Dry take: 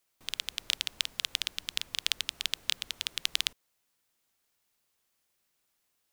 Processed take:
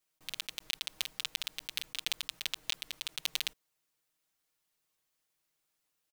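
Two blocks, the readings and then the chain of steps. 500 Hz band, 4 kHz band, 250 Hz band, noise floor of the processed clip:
+0.5 dB, -5.0 dB, no reading, -82 dBFS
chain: block-companded coder 3-bit; comb 6.4 ms, depth 71%; trim -6.5 dB

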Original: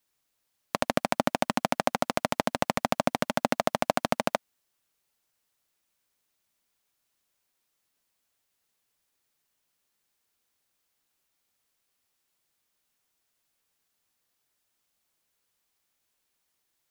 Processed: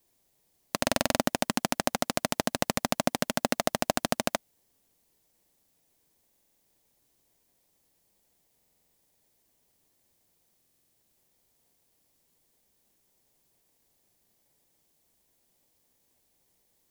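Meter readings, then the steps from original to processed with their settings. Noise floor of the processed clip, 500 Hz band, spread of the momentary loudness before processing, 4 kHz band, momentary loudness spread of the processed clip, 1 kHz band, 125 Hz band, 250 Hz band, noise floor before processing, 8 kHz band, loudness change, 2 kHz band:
-72 dBFS, -2.0 dB, 2 LU, +3.0 dB, 3 LU, -3.5 dB, 0.0 dB, 0.0 dB, -78 dBFS, +6.5 dB, -0.5 dB, -0.5 dB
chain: treble shelf 3.4 kHz +11 dB; in parallel at -8 dB: sample-rate reducer 1.4 kHz, jitter 0%; on the sum: buffer glitch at 0.82/6.24/8.55/10.57 s, samples 2048, times 7; trim -3.5 dB

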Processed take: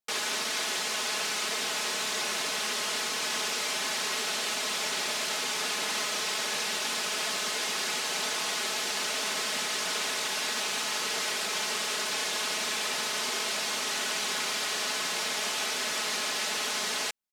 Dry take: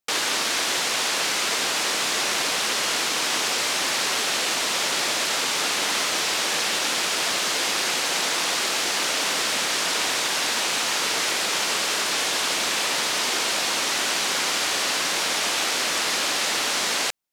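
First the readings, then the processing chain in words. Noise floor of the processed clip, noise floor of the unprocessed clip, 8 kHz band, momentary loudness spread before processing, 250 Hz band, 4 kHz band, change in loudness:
-32 dBFS, -25 dBFS, -7.0 dB, 0 LU, -8.0 dB, -7.0 dB, -7.0 dB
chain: comb 4.7 ms; trim -8.5 dB

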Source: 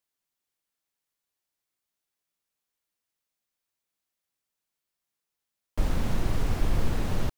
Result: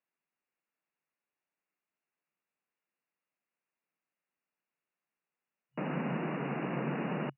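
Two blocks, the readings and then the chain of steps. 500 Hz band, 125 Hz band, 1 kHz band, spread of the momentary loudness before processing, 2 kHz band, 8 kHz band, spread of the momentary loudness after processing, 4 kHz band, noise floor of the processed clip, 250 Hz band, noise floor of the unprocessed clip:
0.0 dB, -8.0 dB, 0.0 dB, 3 LU, 0.0 dB, under -30 dB, 4 LU, -10.5 dB, under -85 dBFS, 0.0 dB, under -85 dBFS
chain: FFT band-pass 130–2900 Hz

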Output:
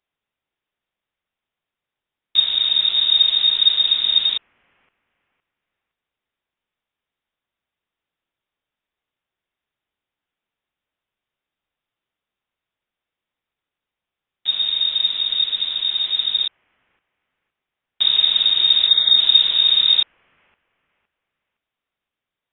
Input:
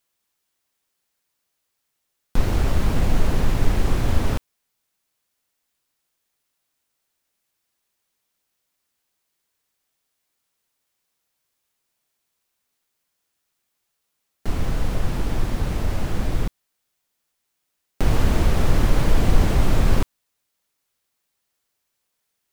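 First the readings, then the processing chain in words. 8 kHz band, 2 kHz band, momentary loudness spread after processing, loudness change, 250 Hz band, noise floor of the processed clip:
under -40 dB, -1.0 dB, 8 LU, +9.5 dB, under -25 dB, under -85 dBFS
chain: spectral selection erased 18.88–19.17 s, 490–1400 Hz; feedback echo behind a high-pass 513 ms, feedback 31%, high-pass 1.6 kHz, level -21.5 dB; frequency inversion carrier 3.7 kHz; trim -3 dB

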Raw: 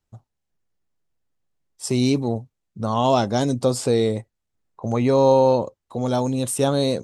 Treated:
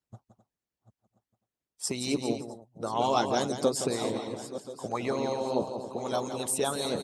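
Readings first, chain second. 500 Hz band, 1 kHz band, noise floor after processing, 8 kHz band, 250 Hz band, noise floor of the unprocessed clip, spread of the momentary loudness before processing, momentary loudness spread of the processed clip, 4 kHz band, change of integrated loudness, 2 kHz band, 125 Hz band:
-10.0 dB, -7.0 dB, under -85 dBFS, -2.5 dB, -10.5 dB, -79 dBFS, 14 LU, 10 LU, -4.5 dB, -9.5 dB, -4.0 dB, -16.0 dB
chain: backward echo that repeats 514 ms, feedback 59%, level -13 dB; high-pass 65 Hz; loudspeakers at several distances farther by 58 m -7 dB, 89 m -11 dB; harmonic-percussive split harmonic -18 dB; trim -2 dB

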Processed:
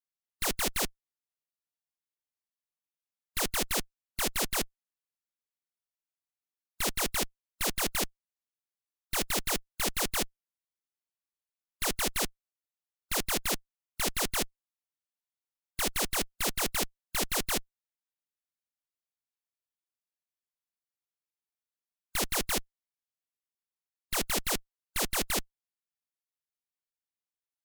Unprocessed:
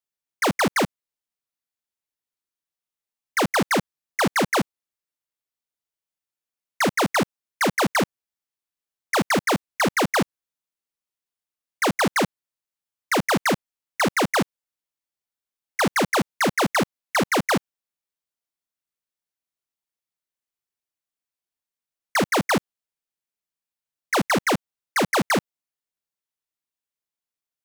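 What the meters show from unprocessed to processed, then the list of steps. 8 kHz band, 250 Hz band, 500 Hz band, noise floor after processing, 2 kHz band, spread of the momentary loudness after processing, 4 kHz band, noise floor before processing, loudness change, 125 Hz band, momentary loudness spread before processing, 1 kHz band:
-0.5 dB, -15.0 dB, -13.0 dB, under -85 dBFS, -12.0 dB, 6 LU, -4.0 dB, under -85 dBFS, -8.0 dB, -13.5 dB, 7 LU, -14.0 dB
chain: spectral contrast reduction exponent 0.54; Chebyshev shaper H 3 -15 dB, 7 -15 dB, 8 -14 dB, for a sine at -6.5 dBFS; trim -6.5 dB

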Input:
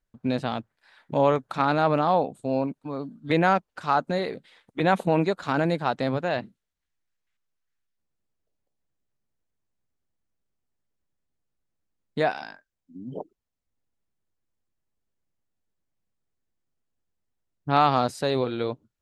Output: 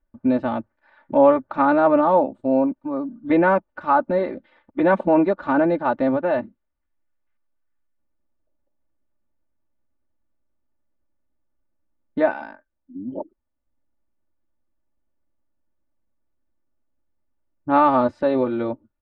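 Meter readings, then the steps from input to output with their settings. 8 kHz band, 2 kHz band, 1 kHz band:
no reading, +2.0 dB, +3.5 dB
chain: low-pass 1.4 kHz 12 dB/octave; comb 3.4 ms, depth 84%; trim +3.5 dB

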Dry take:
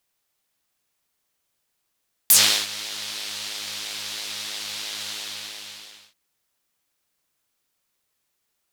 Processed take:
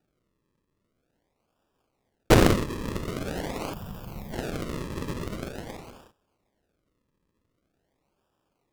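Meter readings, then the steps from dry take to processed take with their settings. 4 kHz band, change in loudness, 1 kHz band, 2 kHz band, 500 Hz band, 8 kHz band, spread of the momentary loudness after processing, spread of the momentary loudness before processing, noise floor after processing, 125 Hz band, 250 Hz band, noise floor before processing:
-14.0 dB, -4.5 dB, +6.5 dB, -3.0 dB, +16.0 dB, -16.5 dB, 20 LU, 19 LU, -77 dBFS, +21.5 dB, +19.0 dB, -76 dBFS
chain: decimation with a swept rate 41×, swing 100% 0.45 Hz; time-frequency box 3.73–4.33 s, 220–12000 Hz -13 dB; loudspeaker Doppler distortion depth 0.98 ms

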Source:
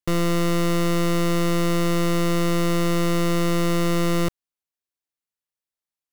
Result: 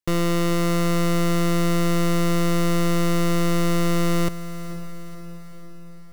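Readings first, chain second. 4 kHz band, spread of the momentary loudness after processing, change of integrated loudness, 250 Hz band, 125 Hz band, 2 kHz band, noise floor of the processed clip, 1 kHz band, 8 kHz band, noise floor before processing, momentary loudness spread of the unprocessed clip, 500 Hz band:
-0.5 dB, 14 LU, 0.0 dB, +0.5 dB, +1.5 dB, 0.0 dB, -37 dBFS, 0.0 dB, +0.5 dB, under -85 dBFS, 0 LU, -1.0 dB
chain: echo that smears into a reverb 497 ms, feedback 54%, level -13 dB

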